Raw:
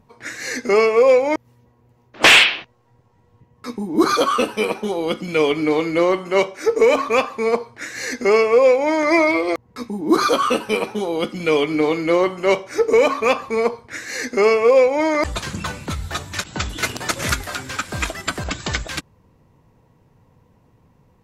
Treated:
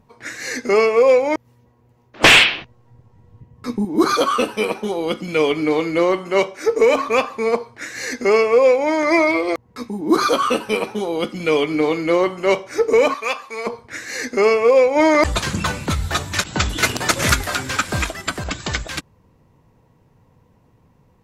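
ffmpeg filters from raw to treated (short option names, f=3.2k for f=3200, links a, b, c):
-filter_complex "[0:a]asettb=1/sr,asplit=3[a][b][c];[a]atrim=end=2.234[d];[b]atrim=start=2.23:end=3.85,asetpts=PTS-STARTPTS,afade=t=in:d=0.004:c=qsin,afade=t=out:st=1.616:d=0.004:c=qsin,lowshelf=f=230:g=11.5[e];[c]atrim=start=3.846[f];[d][e]acrossfade=d=0.004:c1=hsin:c2=qsin[g];[g][f]acrossfade=d=0.004:c1=qsin:c2=hsin,asettb=1/sr,asplit=3[h][i][j];[h]atrim=end=13.144[k];[i]atrim=start=13.14:end=13.67,asetpts=PTS-STARTPTS,afade=t=in:d=0.004:c=qsin,afade=t=out:st=0.526:d=0.004:c=qsin,highpass=f=1.5k:p=1[l];[j]atrim=start=13.666[m];[k][l]acrossfade=d=0.004:c1=hsin:c2=qsin[n];[n][m]acrossfade=d=0.004:c1=qsin:c2=hsin,asplit=3[o][p][q];[o]afade=t=out:st=14.95:d=0.02[r];[p]acontrast=33,afade=t=in:st=14.95:d=0.02,afade=t=out:st=18.01:d=0.02[s];[q]afade=t=in:st=18.01:d=0.02[t];[r][s][t]amix=inputs=3:normalize=0"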